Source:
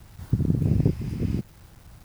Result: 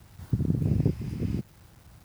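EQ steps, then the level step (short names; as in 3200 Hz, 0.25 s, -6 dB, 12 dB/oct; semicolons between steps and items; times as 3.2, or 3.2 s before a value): HPF 53 Hz; -3.0 dB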